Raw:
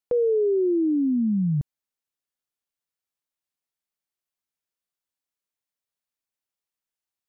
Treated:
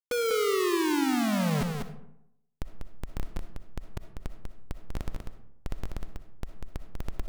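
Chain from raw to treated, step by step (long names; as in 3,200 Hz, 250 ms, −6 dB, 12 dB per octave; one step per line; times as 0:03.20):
octave-band graphic EQ 125/250/500 Hz −11/+8/−11 dB
reversed playback
upward compression, threshold −37 dBFS
reversed playback
comparator with hysteresis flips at −49.5 dBFS
single-tap delay 194 ms −5 dB
on a send at −9.5 dB: convolution reverb RT60 0.80 s, pre-delay 20 ms
on the sum: level +2 dB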